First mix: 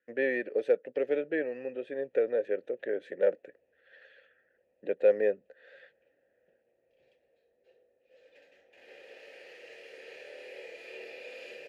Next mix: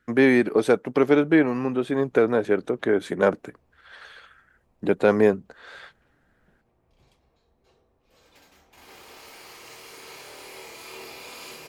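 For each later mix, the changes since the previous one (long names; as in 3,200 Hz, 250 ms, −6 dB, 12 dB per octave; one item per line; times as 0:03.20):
background −7.5 dB
master: remove formant filter e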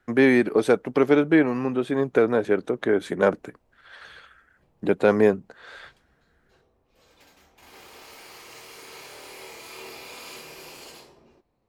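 background: entry −1.15 s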